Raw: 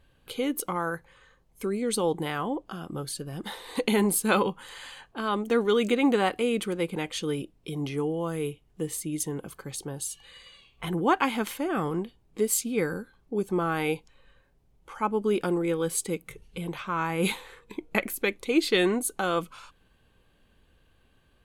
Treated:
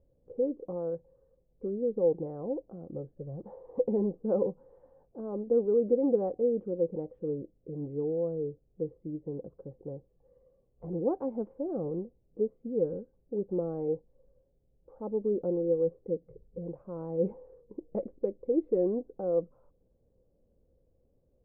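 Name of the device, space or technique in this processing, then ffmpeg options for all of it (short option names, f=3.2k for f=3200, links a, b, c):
under water: -filter_complex "[0:a]lowpass=f=610:w=0.5412,lowpass=f=610:w=1.3066,equalizer=f=520:t=o:w=0.35:g=11,asettb=1/sr,asplit=3[a][b][c];[a]atrim=end=3.174[d];[b]atrim=start=3.17:end=3.89,asetpts=PTS-STARTPTS,afade=t=in:d=0.004:c=qsin,afade=t=out:st=0.716:d=0.004:c=qsin,equalizer=f=125:t=o:w=1:g=6,equalizer=f=250:t=o:w=1:g=-6,equalizer=f=1k:t=o:w=1:g=5,equalizer=f=4k:t=o:w=1:g=8[e];[c]atrim=start=3.886[f];[d][e]acrossfade=d=0.004:c1=hsin:c2=qsin[g];[g][f]acrossfade=d=0.004:c1=qsin:c2=hsin,volume=-6dB"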